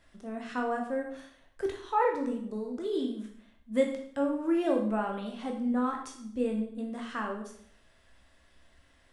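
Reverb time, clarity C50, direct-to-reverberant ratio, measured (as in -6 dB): 0.65 s, 6.5 dB, 1.0 dB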